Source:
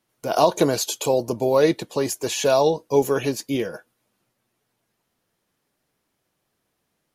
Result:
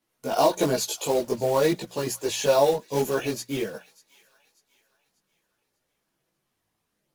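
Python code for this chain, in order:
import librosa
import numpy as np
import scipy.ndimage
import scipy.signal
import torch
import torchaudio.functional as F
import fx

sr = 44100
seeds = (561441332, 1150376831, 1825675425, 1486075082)

y = fx.hum_notches(x, sr, base_hz=60, count=3)
y = fx.quant_float(y, sr, bits=2)
y = fx.chorus_voices(y, sr, voices=4, hz=0.5, base_ms=18, depth_ms=3.2, mix_pct=55)
y = fx.echo_wet_highpass(y, sr, ms=592, feedback_pct=38, hz=1500.0, wet_db=-21.0)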